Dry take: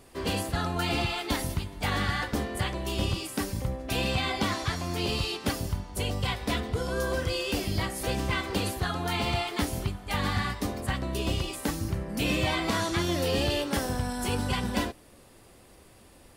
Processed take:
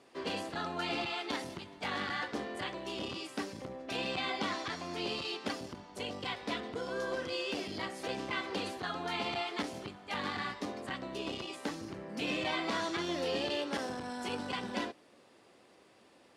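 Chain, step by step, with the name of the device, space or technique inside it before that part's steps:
public-address speaker with an overloaded transformer (saturating transformer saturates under 220 Hz; band-pass filter 240–5,500 Hz)
level −4.5 dB

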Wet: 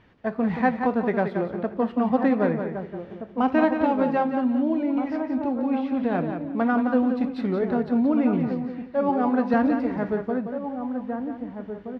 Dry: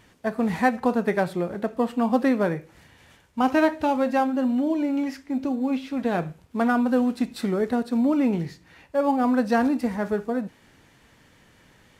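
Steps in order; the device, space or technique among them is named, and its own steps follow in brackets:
shout across a valley (high-frequency loss of the air 300 metres; slap from a distant wall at 270 metres, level −8 dB)
0:09.09–0:09.54: high-pass filter 210 Hz
repeating echo 176 ms, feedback 24%, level −7.5 dB

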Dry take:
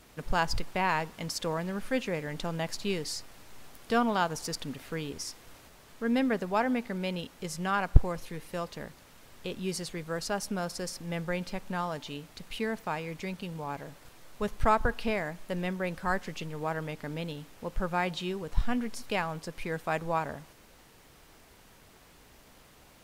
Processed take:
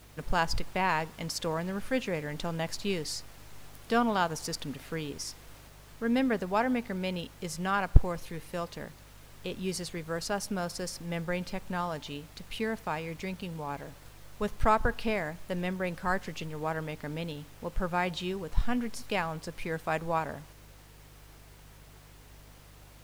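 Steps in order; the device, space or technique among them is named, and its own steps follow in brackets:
video cassette with head-switching buzz (hum with harmonics 50 Hz, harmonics 3, −55 dBFS −4 dB per octave; white noise bed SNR 34 dB)

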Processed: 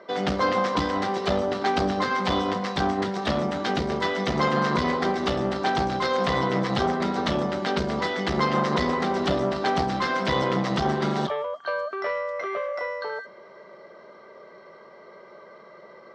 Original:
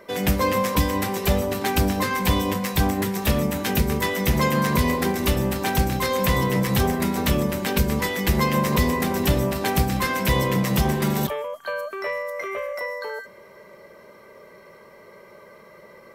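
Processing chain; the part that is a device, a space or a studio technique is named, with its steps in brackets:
guitar amplifier (tube saturation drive 15 dB, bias 0.6; bass and treble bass −2 dB, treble +6 dB; loudspeaker in its box 100–4,500 Hz, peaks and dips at 110 Hz −7 dB, 360 Hz +3 dB, 710 Hz +7 dB, 1,300 Hz +6 dB, 2,500 Hz −7 dB)
level +1 dB

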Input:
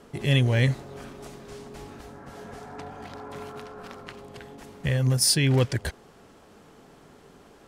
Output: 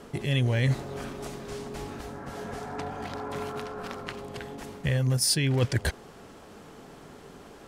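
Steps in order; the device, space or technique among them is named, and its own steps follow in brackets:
compression on the reversed sound (reversed playback; downward compressor 6 to 1, threshold −26 dBFS, peak gain reduction 10 dB; reversed playback)
level +4.5 dB

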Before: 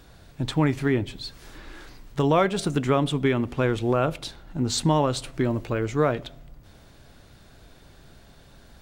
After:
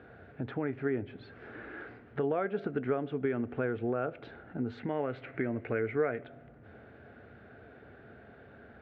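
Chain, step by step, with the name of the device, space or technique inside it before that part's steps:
0:04.78–0:06.24: parametric band 2,100 Hz +11.5 dB 0.48 octaves
bass amplifier (downward compressor 3 to 1, threshold −34 dBFS, peak gain reduction 14 dB; loudspeaker in its box 79–2,300 Hz, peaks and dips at 160 Hz −7 dB, 230 Hz +5 dB, 440 Hz +9 dB, 710 Hz +5 dB, 1,000 Hz −8 dB, 1,500 Hz +8 dB)
level −1.5 dB

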